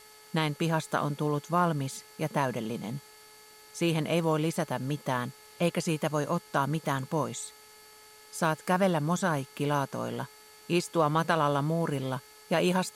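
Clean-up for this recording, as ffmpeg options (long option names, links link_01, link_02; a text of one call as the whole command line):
ffmpeg -i in.wav -af "adeclick=threshold=4,bandreject=frequency=428:width_type=h:width=4,bandreject=frequency=856:width_type=h:width=4,bandreject=frequency=1284:width_type=h:width=4,bandreject=frequency=1712:width_type=h:width=4,bandreject=frequency=2140:width_type=h:width=4,bandreject=frequency=4500:width=30,afftdn=noise_reduction=21:noise_floor=-54" out.wav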